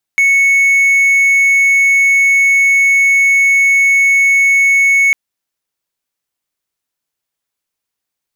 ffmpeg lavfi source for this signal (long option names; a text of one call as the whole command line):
ffmpeg -f lavfi -i "aevalsrc='0.562*(1-4*abs(mod(2210*t+0.25,1)-0.5))':duration=4.95:sample_rate=44100" out.wav